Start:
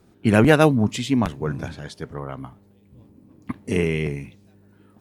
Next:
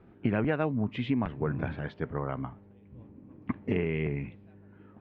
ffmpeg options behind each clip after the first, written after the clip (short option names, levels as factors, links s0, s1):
-af "lowpass=f=2600:w=0.5412,lowpass=f=2600:w=1.3066,acompressor=threshold=0.0562:ratio=6"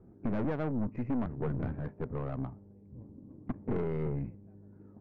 -af "aeval=exprs='(tanh(31.6*val(0)+0.5)-tanh(0.5))/31.6':c=same,asuperstop=centerf=3800:order=12:qfactor=1.4,adynamicsmooth=sensitivity=1.5:basefreq=700,volume=1.41"